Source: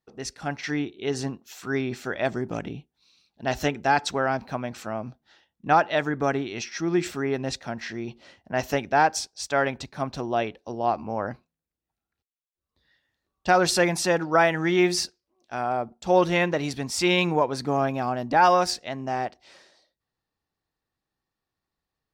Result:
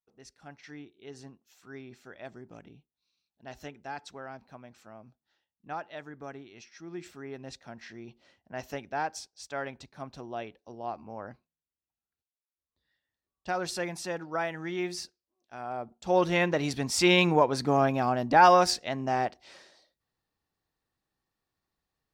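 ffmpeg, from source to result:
-af "afade=t=in:st=6.83:d=1.02:silence=0.501187,afade=t=in:st=15.58:d=1.34:silence=0.251189"

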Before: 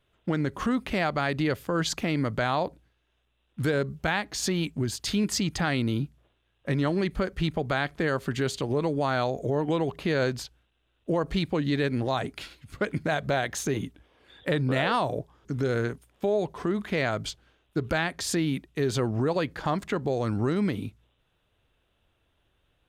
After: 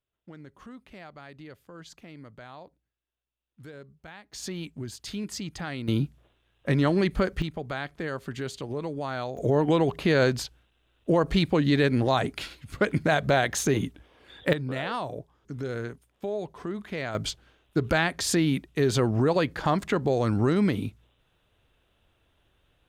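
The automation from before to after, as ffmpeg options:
-af "asetnsamples=n=441:p=0,asendcmd='4.33 volume volume -8dB;5.88 volume volume 3dB;7.42 volume volume -6dB;9.37 volume volume 4dB;14.53 volume volume -6dB;17.15 volume volume 3dB',volume=-19dB"

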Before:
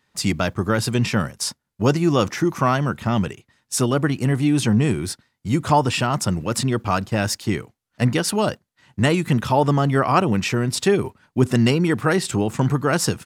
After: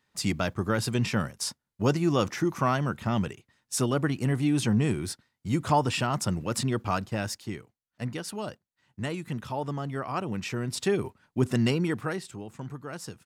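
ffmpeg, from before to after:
-af "volume=0.5dB,afade=t=out:st=6.86:d=0.73:silence=0.398107,afade=t=in:st=10.13:d=0.89:silence=0.446684,afade=t=out:st=11.81:d=0.49:silence=0.266073"

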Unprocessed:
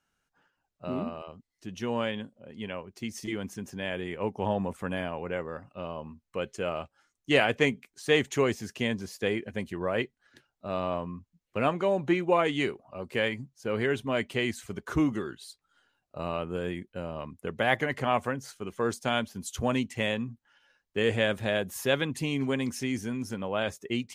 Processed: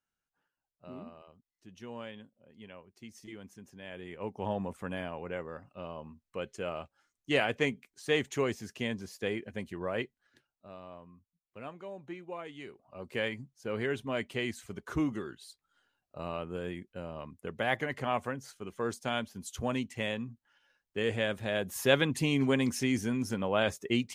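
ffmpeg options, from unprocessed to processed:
-af "volume=14dB,afade=t=in:st=3.82:d=0.7:silence=0.398107,afade=t=out:st=10.02:d=0.75:silence=0.237137,afade=t=in:st=12.65:d=0.41:silence=0.237137,afade=t=in:st=21.49:d=0.44:silence=0.473151"

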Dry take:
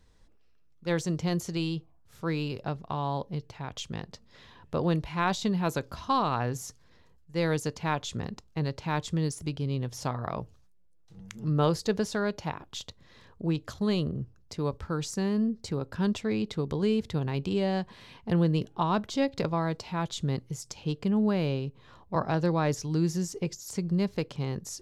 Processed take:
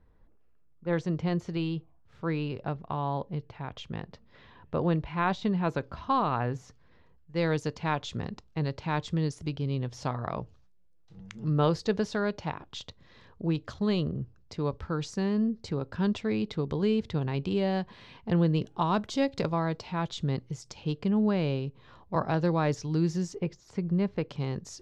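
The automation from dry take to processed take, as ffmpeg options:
-af "asetnsamples=n=441:p=0,asendcmd='0.93 lowpass f 2800;7.36 lowpass f 4800;18.65 lowpass f 9000;19.54 lowpass f 5000;23.35 lowpass f 2500;24.29 lowpass f 5200',lowpass=1.5k"

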